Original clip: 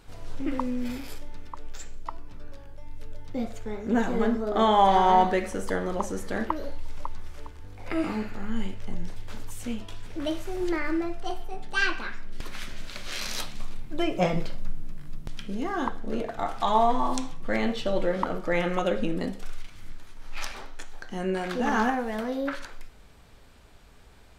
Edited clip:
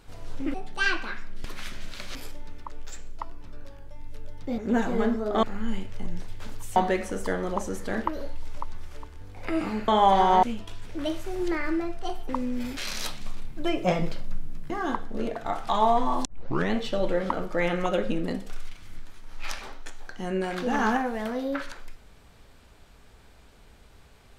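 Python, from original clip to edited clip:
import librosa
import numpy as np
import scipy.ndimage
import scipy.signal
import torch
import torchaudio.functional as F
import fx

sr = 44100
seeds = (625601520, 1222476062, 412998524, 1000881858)

y = fx.edit(x, sr, fx.swap(start_s=0.54, length_s=0.48, other_s=11.5, other_length_s=1.61),
    fx.cut(start_s=3.45, length_s=0.34),
    fx.swap(start_s=4.64, length_s=0.55, other_s=8.31, other_length_s=1.33),
    fx.cut(start_s=15.04, length_s=0.59),
    fx.tape_start(start_s=17.18, length_s=0.47), tone=tone)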